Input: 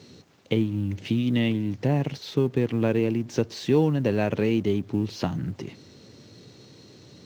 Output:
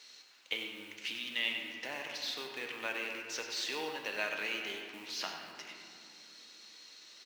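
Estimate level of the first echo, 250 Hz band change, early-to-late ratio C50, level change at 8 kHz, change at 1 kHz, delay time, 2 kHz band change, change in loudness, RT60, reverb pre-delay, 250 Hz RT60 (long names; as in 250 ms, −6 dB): −9.5 dB, −26.5 dB, 3.0 dB, can't be measured, −8.0 dB, 97 ms, +1.0 dB, −12.0 dB, 2.8 s, 3 ms, 4.8 s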